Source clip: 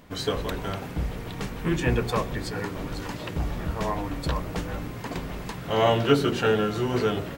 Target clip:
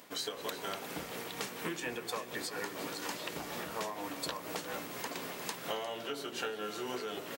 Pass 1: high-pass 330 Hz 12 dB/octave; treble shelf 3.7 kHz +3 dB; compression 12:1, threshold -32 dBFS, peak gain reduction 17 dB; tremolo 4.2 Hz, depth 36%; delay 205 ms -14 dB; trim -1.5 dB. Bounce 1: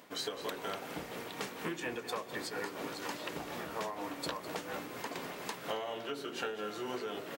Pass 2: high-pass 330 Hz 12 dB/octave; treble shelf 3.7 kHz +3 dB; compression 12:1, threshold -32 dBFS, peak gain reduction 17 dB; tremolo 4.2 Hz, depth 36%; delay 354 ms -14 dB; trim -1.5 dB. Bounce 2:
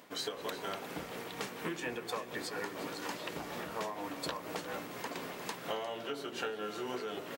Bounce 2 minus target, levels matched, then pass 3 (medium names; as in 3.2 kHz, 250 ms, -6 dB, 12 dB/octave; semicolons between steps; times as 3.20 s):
8 kHz band -3.5 dB
high-pass 330 Hz 12 dB/octave; treble shelf 3.7 kHz +10 dB; compression 12:1, threshold -32 dBFS, peak gain reduction 17.5 dB; tremolo 4.2 Hz, depth 36%; delay 354 ms -14 dB; trim -1.5 dB